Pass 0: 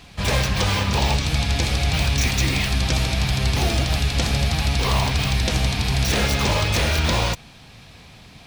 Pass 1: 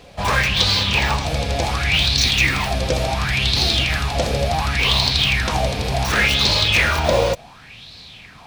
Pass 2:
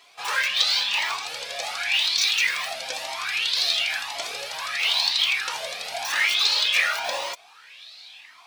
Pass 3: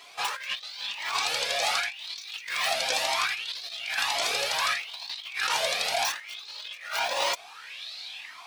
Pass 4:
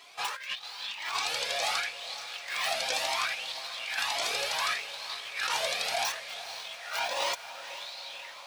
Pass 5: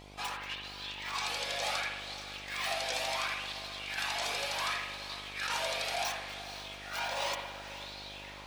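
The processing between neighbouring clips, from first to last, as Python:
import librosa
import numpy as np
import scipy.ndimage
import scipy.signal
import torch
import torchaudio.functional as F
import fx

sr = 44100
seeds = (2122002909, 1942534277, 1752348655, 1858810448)

y1 = fx.bell_lfo(x, sr, hz=0.69, low_hz=500.0, high_hz=4300.0, db=17)
y1 = F.gain(torch.from_numpy(y1), -2.0).numpy()
y2 = scipy.signal.sosfilt(scipy.signal.bessel(2, 1200.0, 'highpass', norm='mag', fs=sr, output='sos'), y1)
y2 = fx.comb_cascade(y2, sr, direction='rising', hz=0.96)
y2 = F.gain(torch.from_numpy(y2), 1.0).numpy()
y3 = fx.over_compress(y2, sr, threshold_db=-30.0, ratio=-0.5)
y4 = fx.echo_diffused(y3, sr, ms=495, feedback_pct=63, wet_db=-13.0)
y4 = F.gain(torch.from_numpy(y4), -3.5).numpy()
y5 = fx.rev_spring(y4, sr, rt60_s=1.0, pass_ms=(59,), chirp_ms=45, drr_db=3.0)
y5 = fx.dmg_buzz(y5, sr, base_hz=50.0, harmonics=18, level_db=-48.0, tilt_db=-3, odd_only=False)
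y5 = F.gain(torch.from_numpy(y5), -5.0).numpy()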